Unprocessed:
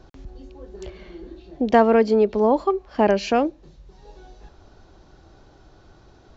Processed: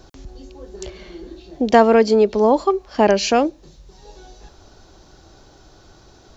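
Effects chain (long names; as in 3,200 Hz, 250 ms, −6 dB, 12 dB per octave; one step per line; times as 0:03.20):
bass and treble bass −2 dB, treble +11 dB
level +3.5 dB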